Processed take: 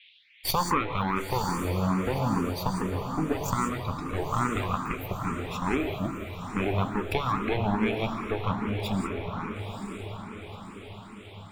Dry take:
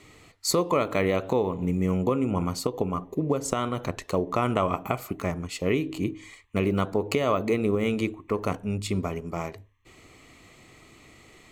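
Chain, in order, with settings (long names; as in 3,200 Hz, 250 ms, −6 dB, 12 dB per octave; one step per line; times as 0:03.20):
lower of the sound and its delayed copy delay 0.84 ms
noise reduction from a noise print of the clip's start 20 dB
noise gate with hold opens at −50 dBFS
noise in a band 2,000–3,700 Hz −58 dBFS
on a send: feedback delay with all-pass diffusion 966 ms, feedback 50%, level −7.5 dB
on the sum: reverb whose tail is shaped and stops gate 210 ms rising, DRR 7 dB
frequency shifter mixed with the dry sound +2.4 Hz
level +2.5 dB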